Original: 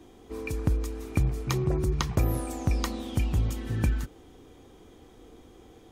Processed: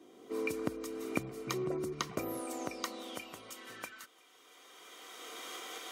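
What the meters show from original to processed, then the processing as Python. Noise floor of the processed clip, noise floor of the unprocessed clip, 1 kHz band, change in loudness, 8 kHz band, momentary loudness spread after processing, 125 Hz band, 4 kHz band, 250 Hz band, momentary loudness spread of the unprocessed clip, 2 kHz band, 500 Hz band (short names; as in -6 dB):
-62 dBFS, -53 dBFS, -4.0 dB, -10.5 dB, -3.5 dB, 16 LU, -21.5 dB, -2.5 dB, -7.5 dB, 7 LU, -2.5 dB, -3.0 dB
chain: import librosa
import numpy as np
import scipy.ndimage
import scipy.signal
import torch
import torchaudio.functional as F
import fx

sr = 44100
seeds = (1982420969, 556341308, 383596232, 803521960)

p1 = fx.recorder_agc(x, sr, target_db=-17.5, rise_db_per_s=16.0, max_gain_db=30)
p2 = fx.notch_comb(p1, sr, f0_hz=840.0)
p3 = p2 + fx.echo_single(p2, sr, ms=1013, db=-23.5, dry=0)
p4 = fx.filter_sweep_highpass(p3, sr, from_hz=270.0, to_hz=1200.0, start_s=2.05, end_s=4.27, q=0.77)
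y = F.gain(torch.from_numpy(p4), -4.5).numpy()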